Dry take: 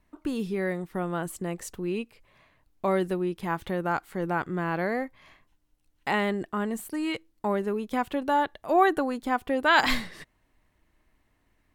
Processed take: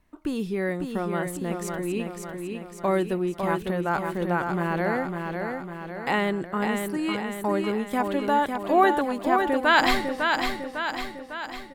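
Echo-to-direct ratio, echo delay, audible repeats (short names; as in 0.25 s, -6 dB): -3.5 dB, 0.552 s, 6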